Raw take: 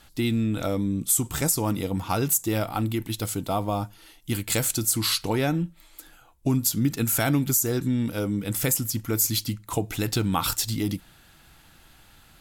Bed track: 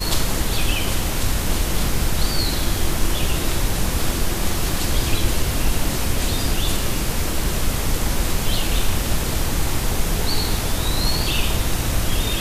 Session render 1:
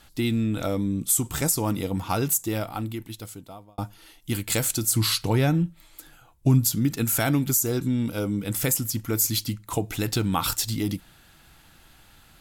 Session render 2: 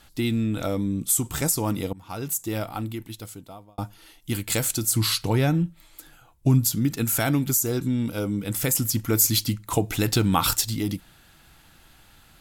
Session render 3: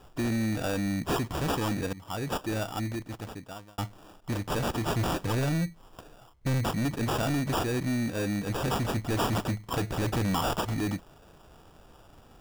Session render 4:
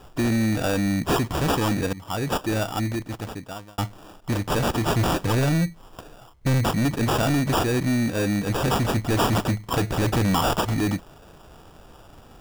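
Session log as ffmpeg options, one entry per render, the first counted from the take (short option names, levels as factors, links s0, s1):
-filter_complex "[0:a]asettb=1/sr,asplit=3[s0][s1][s2];[s0]atrim=end=4.914[s3];[s1]atrim=start=4.91:end=6.76,asetpts=PTS-STARTPTS,afade=t=in:d=0.004:c=qsin,afade=t=out:st=1.846:d=0.004:c=qsin,equalizer=f=120:w=1.5:g=8[s4];[s2]atrim=start=6.756[s5];[s3][s4]acrossfade=d=0.004:c1=hsin:c2=qsin[s6];[s6][s5]acrossfade=d=0.004:c1=qsin:c2=hsin,asettb=1/sr,asplit=3[s7][s8][s9];[s7]atrim=end=7.634[s10];[s8]atrim=start=7.63:end=8.44,asetpts=PTS-STARTPTS,afade=t=in:d=0.004:c=qsin,afade=t=out:st=0.806:d=0.004:c=qsin,bandreject=f=1800:w=8.9[s11];[s9]atrim=start=8.436[s12];[s10][s11]acrossfade=d=0.004:c1=hsin:c2=qsin[s13];[s13][s12]acrossfade=d=0.004:c1=qsin:c2=hsin,asplit=2[s14][s15];[s14]atrim=end=3.78,asetpts=PTS-STARTPTS,afade=t=out:st=2.2:d=1.58[s16];[s15]atrim=start=3.78,asetpts=PTS-STARTPTS,afade=t=in:d=0.004:c=hsin[s17];[s16][s17]concat=n=2:v=0:a=1"
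-filter_complex "[0:a]asplit=4[s0][s1][s2][s3];[s0]atrim=end=1.93,asetpts=PTS-STARTPTS,afade=t=out:st=1.926:d=0.004:c=hsin:silence=0.0707946[s4];[s1]atrim=start=1.93:end=8.752,asetpts=PTS-STARTPTS,afade=t=in:d=0.68:silence=0.0707946[s5];[s2]atrim=start=8.748:end=10.612,asetpts=PTS-STARTPTS,volume=1.5[s6];[s3]atrim=start=10.608[s7];[s4][s5]concat=n=2:v=0:a=1[s8];[s8][s6]acrossfade=d=0.004:c1=hsin:c2=hsin[s9];[s9][s7]acrossfade=d=0.004:c1=hsin:c2=hsin"
-af "acrusher=samples=21:mix=1:aa=0.000001,asoftclip=type=tanh:threshold=0.0631"
-af "volume=2.11"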